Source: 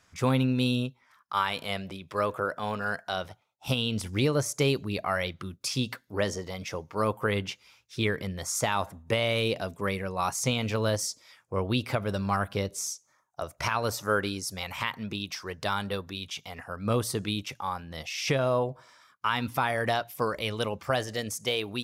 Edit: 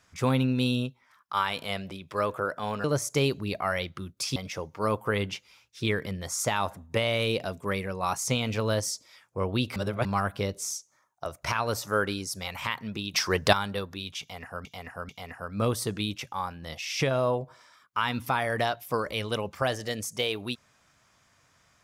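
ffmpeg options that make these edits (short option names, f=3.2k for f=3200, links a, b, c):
-filter_complex "[0:a]asplit=9[a][b][c][d][e][f][g][h][i];[a]atrim=end=2.842[j];[b]atrim=start=4.278:end=5.802[k];[c]atrim=start=6.518:end=11.922[l];[d]atrim=start=11.918:end=12.212,asetpts=PTS-STARTPTS,areverse[m];[e]atrim=start=12.208:end=15.302[n];[f]atrim=start=15.298:end=15.692,asetpts=PTS-STARTPTS,volume=11dB[o];[g]atrim=start=15.688:end=16.812[p];[h]atrim=start=16.368:end=16.812[q];[i]atrim=start=16.368[r];[j][k]acrossfade=d=0.004:c1=hsin:c2=hsin[s];[s][l]acrossfade=d=0.004:c1=hsin:c2=hsin[t];[t][m]acrossfade=d=0.004:c1=hsin:c2=hsin[u];[u][n]acrossfade=d=0.004:c1=hsin:c2=hsin[v];[v][o]acrossfade=d=0.004:c1=hsin:c2=hsin[w];[w][p]acrossfade=d=0.004:c1=hsin:c2=hsin[x];[x][q]acrossfade=d=0.004:c1=hsin:c2=hsin[y];[y][r]acrossfade=d=0.004:c1=hsin:c2=hsin"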